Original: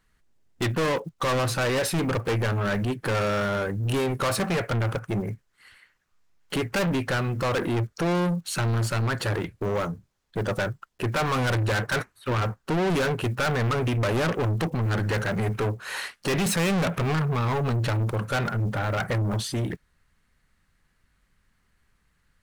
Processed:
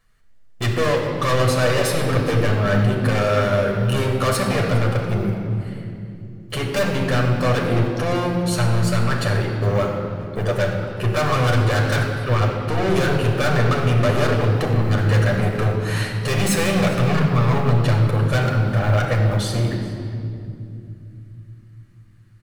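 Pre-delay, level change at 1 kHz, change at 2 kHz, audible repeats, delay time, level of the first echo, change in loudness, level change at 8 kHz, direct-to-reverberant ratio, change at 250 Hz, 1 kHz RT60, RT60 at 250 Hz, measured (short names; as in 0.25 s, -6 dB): 8 ms, +5.0 dB, +4.5 dB, 1, 0.411 s, -19.5 dB, +6.5 dB, +4.0 dB, -0.5 dB, +5.5 dB, 2.3 s, 4.4 s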